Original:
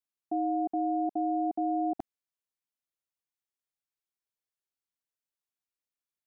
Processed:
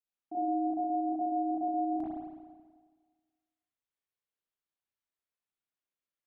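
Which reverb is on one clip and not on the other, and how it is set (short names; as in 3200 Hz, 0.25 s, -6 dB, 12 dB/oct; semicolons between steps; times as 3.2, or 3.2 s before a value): spring tank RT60 1.5 s, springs 33/54 ms, chirp 30 ms, DRR -9 dB; gain -9.5 dB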